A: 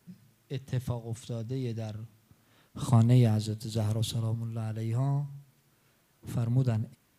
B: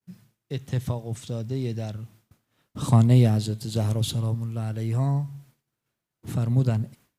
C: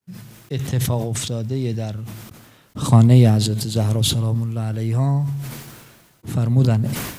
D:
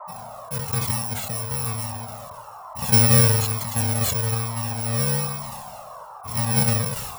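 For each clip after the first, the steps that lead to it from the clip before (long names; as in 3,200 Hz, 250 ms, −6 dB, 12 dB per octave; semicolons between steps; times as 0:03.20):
downward expander −53 dBFS; level +5 dB
level that may fall only so fast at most 40 dB per second; level +5 dB
samples in bit-reversed order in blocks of 128 samples; noise in a band 580–1,200 Hz −35 dBFS; flanger whose copies keep moving one way falling 1.1 Hz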